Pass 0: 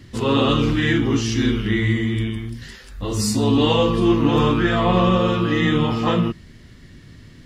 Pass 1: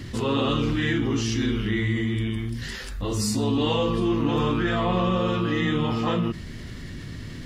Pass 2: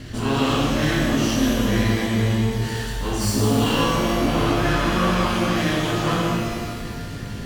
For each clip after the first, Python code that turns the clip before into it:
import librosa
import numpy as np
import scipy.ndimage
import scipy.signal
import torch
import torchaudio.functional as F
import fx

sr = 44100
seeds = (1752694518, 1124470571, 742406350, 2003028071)

y1 = fx.env_flatten(x, sr, amount_pct=50)
y1 = F.gain(torch.from_numpy(y1), -8.0).numpy()
y2 = fx.lower_of_two(y1, sr, delay_ms=0.69)
y2 = fx.rev_shimmer(y2, sr, seeds[0], rt60_s=1.8, semitones=12, shimmer_db=-8, drr_db=-3.0)